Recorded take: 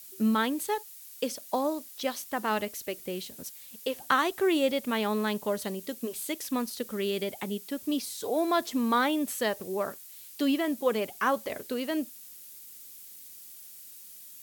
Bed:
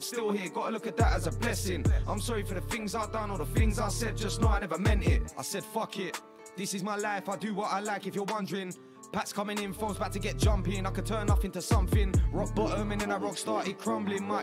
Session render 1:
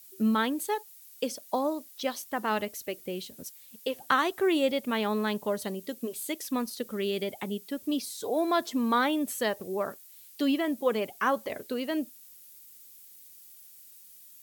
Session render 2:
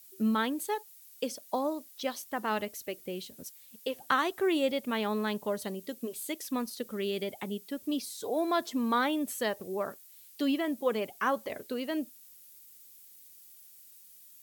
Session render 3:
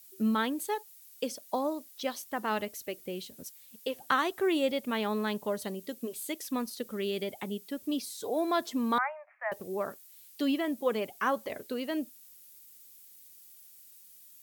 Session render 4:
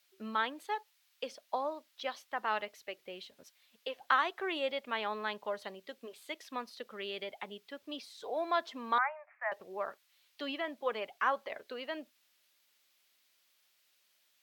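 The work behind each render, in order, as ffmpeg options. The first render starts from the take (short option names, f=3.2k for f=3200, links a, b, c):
-af "afftdn=nr=6:nf=-48"
-af "volume=-2.5dB"
-filter_complex "[0:a]asettb=1/sr,asplit=3[a][b][c];[a]atrim=end=8.984[d];[b]atrim=start=8.98:end=9.52,asetpts=PTS-STARTPTS,afade=t=in:d=0.004:c=qsin,afade=t=out:st=0.536:d=0.004:c=qsin,asuperpass=centerf=1200:order=20:qfactor=0.69[e];[c]atrim=start=9.516[f];[d][e]acrossfade=d=0.004:c1=hsin:c2=qsin[g];[g][f]acrossfade=d=0.004:c1=qsin:c2=hsin"
-filter_complex "[0:a]acrossover=split=550 4300:gain=0.141 1 0.0794[a][b][c];[a][b][c]amix=inputs=3:normalize=0"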